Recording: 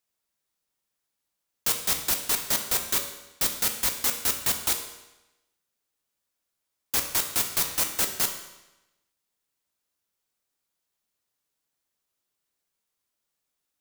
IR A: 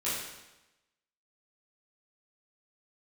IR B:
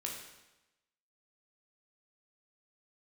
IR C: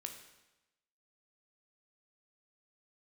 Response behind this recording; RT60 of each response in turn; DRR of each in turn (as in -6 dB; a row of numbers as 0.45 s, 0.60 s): C; 1.0 s, 1.0 s, 1.0 s; -11.0 dB, -1.5 dB, 4.0 dB